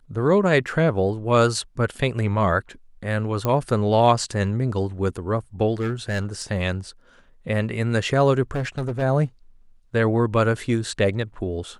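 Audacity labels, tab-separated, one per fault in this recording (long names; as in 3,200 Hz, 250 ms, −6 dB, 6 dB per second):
3.450000	3.450000	click −10 dBFS
5.740000	6.420000	clipping −19.5 dBFS
8.510000	9.030000	clipping −21.5 dBFS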